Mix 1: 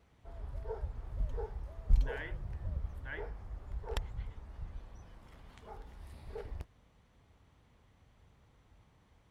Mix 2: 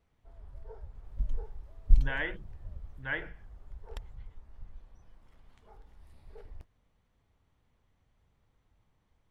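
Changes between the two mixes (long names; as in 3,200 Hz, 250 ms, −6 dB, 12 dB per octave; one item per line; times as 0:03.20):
speech +10.5 dB
first sound −8.5 dB
master: remove high-pass filter 42 Hz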